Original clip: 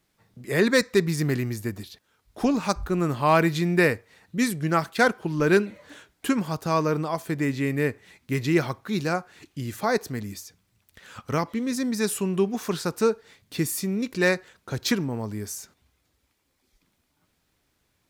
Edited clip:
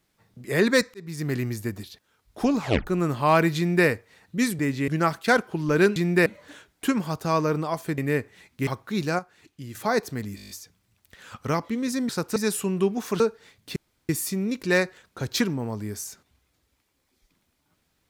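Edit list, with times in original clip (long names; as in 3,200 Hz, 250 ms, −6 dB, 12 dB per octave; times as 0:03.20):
0:00.94–0:01.43: fade in
0:02.60: tape stop 0.27 s
0:03.57–0:03.87: duplicate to 0:05.67
0:07.39–0:07.68: move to 0:04.59
0:08.37–0:08.65: remove
0:09.17–0:09.73: clip gain −6.5 dB
0:10.34: stutter 0.02 s, 8 plays
0:12.77–0:13.04: move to 0:11.93
0:13.60: splice in room tone 0.33 s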